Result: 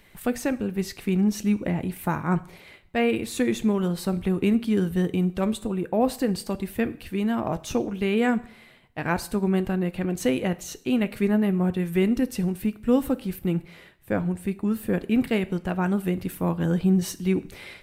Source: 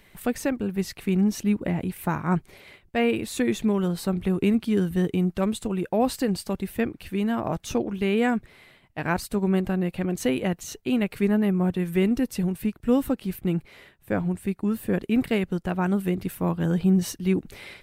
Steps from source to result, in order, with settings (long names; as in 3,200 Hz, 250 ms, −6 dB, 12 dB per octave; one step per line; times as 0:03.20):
0:05.56–0:06.29: parametric band 5,500 Hz −9.5 dB → −2.5 dB 2.3 octaves
coupled-rooms reverb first 0.51 s, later 1.6 s, from −25 dB, DRR 12.5 dB